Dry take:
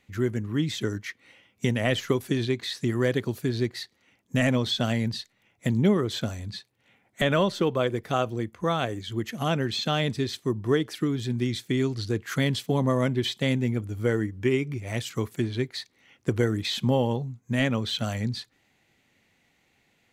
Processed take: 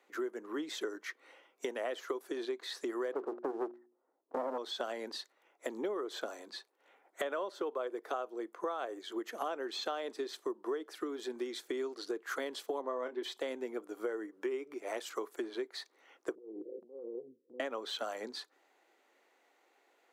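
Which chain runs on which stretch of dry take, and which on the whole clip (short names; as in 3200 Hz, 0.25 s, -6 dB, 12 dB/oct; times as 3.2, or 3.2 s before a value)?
3.12–4.58 Gaussian blur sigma 8 samples + sample leveller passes 3 + notches 60/120/180/240/300/360 Hz
12.81–13.23 BPF 150–4900 Hz + doubler 28 ms -9 dB
16.35–17.6 CVSD 32 kbps + rippled Chebyshev low-pass 530 Hz, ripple 6 dB + negative-ratio compressor -34 dBFS, ratio -0.5
whole clip: steep high-pass 340 Hz 36 dB/oct; resonant high shelf 1700 Hz -7.5 dB, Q 1.5; compressor 6:1, threshold -36 dBFS; gain +1.5 dB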